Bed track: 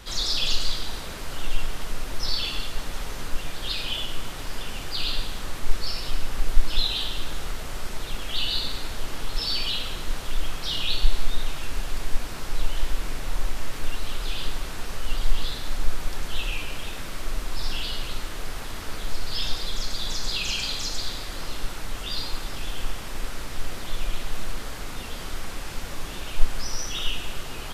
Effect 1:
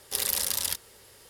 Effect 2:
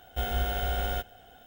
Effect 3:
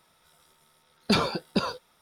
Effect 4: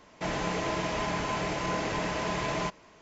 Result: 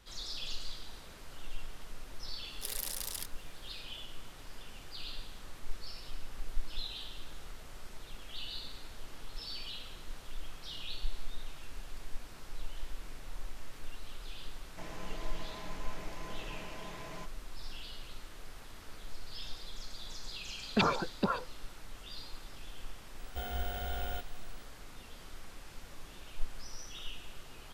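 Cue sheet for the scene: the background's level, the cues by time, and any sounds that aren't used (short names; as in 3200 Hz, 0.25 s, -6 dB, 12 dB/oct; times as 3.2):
bed track -16 dB
2.5 add 1 -11.5 dB
14.56 add 4 -16 dB
19.67 add 3 -6 dB + LFO low-pass saw up 7 Hz 800–3300 Hz
23.19 add 2 -9 dB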